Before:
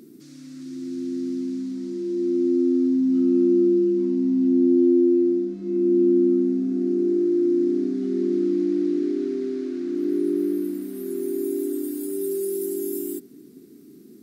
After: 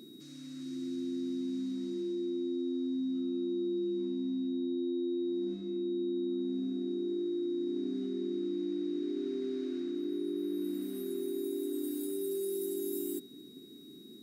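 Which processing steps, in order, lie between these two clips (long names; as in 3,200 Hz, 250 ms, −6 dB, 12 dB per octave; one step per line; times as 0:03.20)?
reversed playback
downward compressor, threshold −27 dBFS, peak gain reduction 12 dB
reversed playback
steady tone 3,800 Hz −51 dBFS
level −5 dB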